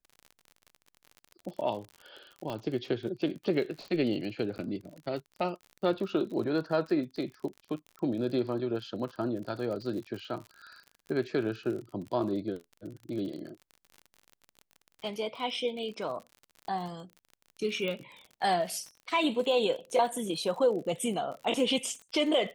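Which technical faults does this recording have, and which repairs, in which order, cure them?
crackle 48 per s -39 dBFS
2.50 s: pop -24 dBFS
4.58–4.59 s: dropout 9.8 ms
17.88 s: pop -23 dBFS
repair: de-click; interpolate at 4.58 s, 9.8 ms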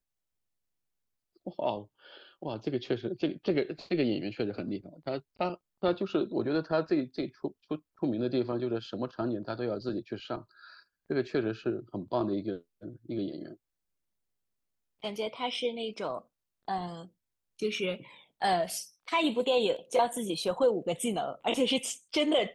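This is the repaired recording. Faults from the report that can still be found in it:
2.50 s: pop

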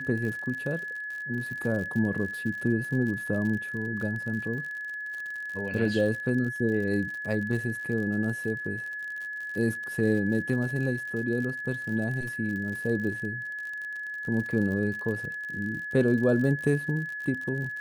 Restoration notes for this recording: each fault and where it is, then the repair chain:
crackle 60 per s -35 dBFS
whine 1.7 kHz -33 dBFS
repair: de-click; band-stop 1.7 kHz, Q 30

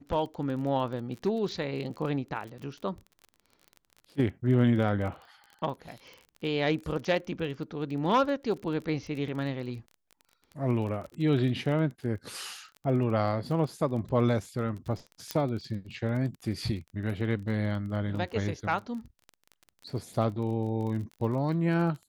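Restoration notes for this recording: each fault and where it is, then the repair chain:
crackle 28 per s -37 dBFS
15.31 s: pop -15 dBFS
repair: de-click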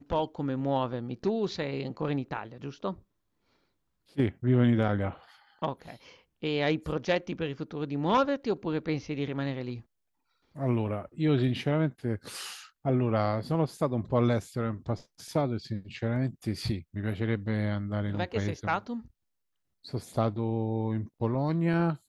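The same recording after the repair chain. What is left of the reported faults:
nothing left

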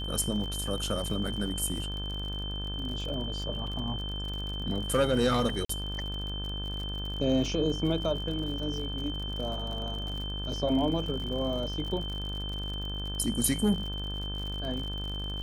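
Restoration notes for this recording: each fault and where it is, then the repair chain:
buzz 50 Hz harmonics 35 -36 dBFS
crackle 56 per s -36 dBFS
whine 3.1 kHz -37 dBFS
3.67 s: dropout 3.1 ms
5.65–5.69 s: dropout 44 ms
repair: de-click; band-stop 3.1 kHz, Q 30; de-hum 50 Hz, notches 35; interpolate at 3.67 s, 3.1 ms; interpolate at 5.65 s, 44 ms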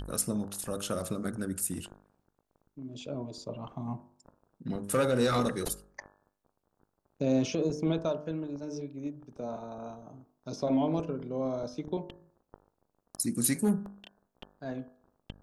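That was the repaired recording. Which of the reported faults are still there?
nothing left

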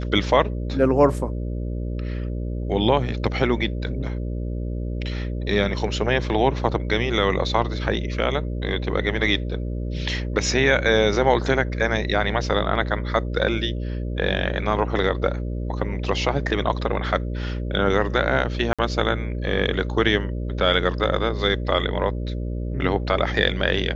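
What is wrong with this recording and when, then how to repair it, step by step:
buzz 60 Hz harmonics 10 -27 dBFS
18.73–18.79 s: dropout 56 ms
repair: de-hum 60 Hz, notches 10; interpolate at 18.73 s, 56 ms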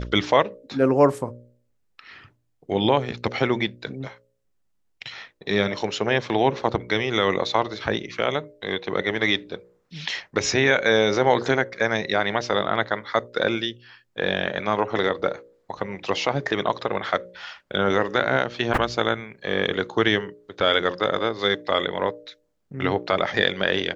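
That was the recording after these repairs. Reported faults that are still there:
nothing left

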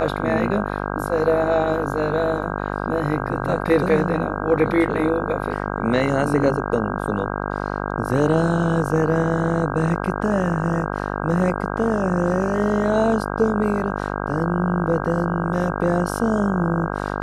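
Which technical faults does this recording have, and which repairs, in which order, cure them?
buzz 50 Hz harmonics 32 -26 dBFS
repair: de-hum 50 Hz, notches 32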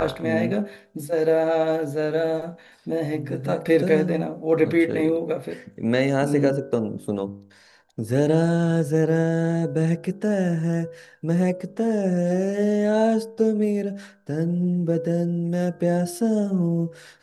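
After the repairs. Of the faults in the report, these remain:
nothing left

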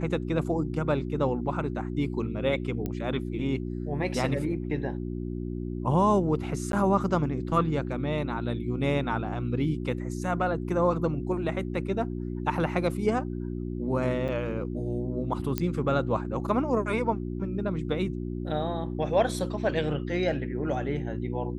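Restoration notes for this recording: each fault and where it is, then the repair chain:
hum 60 Hz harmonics 6 -33 dBFS
2.86 s: pop -19 dBFS
6.72–6.73 s: dropout 12 ms
14.28–14.29 s: dropout 7.7 ms
15.58 s: pop -12 dBFS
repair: de-click; de-hum 60 Hz, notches 6; interpolate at 6.72 s, 12 ms; interpolate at 14.28 s, 7.7 ms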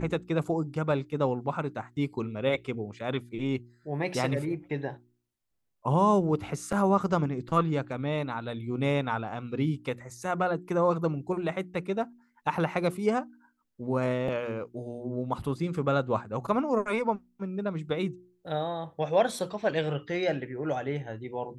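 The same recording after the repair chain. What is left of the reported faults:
nothing left

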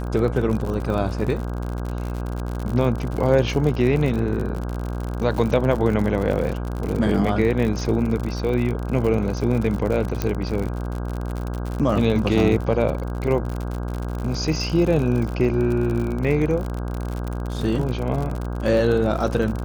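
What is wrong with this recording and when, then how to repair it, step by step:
buzz 60 Hz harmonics 27 -27 dBFS
crackle 60 per s -26 dBFS
10.22 s: pop -9 dBFS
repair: de-click; de-hum 60 Hz, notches 27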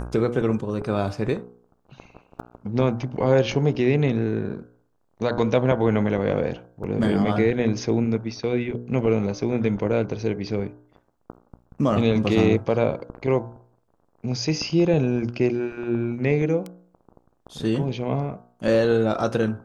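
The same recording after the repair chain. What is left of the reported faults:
nothing left

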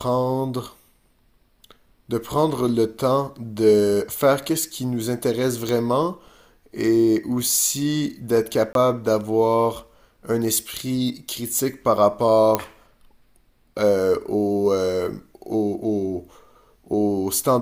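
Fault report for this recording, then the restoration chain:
5.69 s: pop
8.73–8.75 s: dropout 22 ms
12.55 s: pop -4 dBFS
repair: de-click; interpolate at 8.73 s, 22 ms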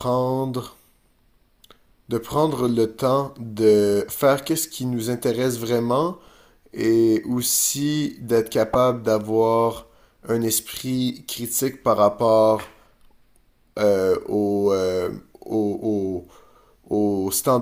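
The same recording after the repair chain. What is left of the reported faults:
nothing left

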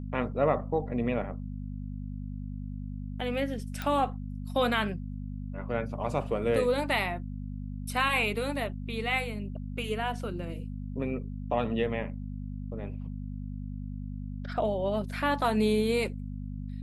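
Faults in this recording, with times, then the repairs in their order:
hum 50 Hz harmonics 5 -37 dBFS
3.82 s: pop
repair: de-click; de-hum 50 Hz, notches 5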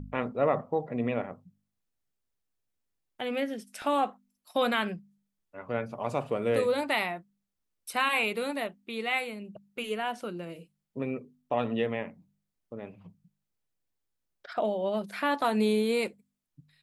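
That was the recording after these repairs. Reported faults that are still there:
nothing left

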